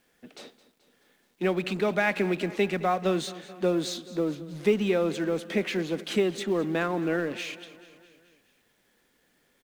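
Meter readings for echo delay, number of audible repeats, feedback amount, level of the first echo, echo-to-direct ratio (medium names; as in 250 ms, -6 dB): 215 ms, 4, 59%, -17.5 dB, -15.5 dB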